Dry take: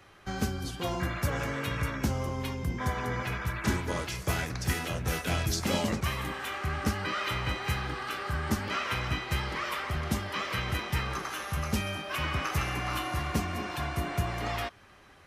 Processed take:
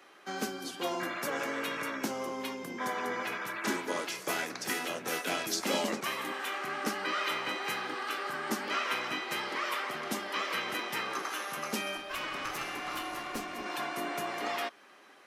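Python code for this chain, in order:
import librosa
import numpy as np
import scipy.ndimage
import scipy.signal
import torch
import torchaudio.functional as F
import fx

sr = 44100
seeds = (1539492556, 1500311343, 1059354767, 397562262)

y = scipy.signal.sosfilt(scipy.signal.butter(4, 250.0, 'highpass', fs=sr, output='sos'), x)
y = fx.tube_stage(y, sr, drive_db=28.0, bias=0.65, at=(11.97, 13.66))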